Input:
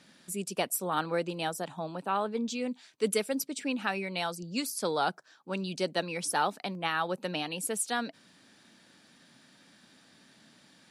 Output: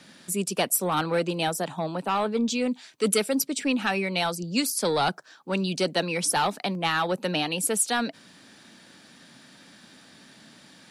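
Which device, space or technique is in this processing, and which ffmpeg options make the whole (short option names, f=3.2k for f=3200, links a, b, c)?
one-band saturation: -filter_complex "[0:a]acrossover=split=240|2600[a][b][c];[b]asoftclip=type=tanh:threshold=-27.5dB[d];[a][d][c]amix=inputs=3:normalize=0,volume=8dB"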